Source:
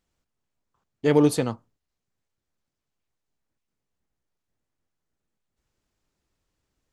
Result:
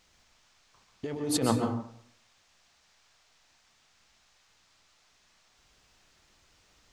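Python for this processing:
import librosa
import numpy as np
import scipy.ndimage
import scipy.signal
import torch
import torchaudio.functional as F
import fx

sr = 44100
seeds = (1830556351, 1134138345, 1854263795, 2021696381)

y = fx.hum_notches(x, sr, base_hz=60, count=5)
y = fx.over_compress(y, sr, threshold_db=-31.0, ratio=-1.0)
y = fx.dmg_noise_band(y, sr, seeds[0], low_hz=590.0, high_hz=6700.0, level_db=-68.0)
y = fx.rev_plate(y, sr, seeds[1], rt60_s=0.65, hf_ratio=0.55, predelay_ms=115, drr_db=4.0)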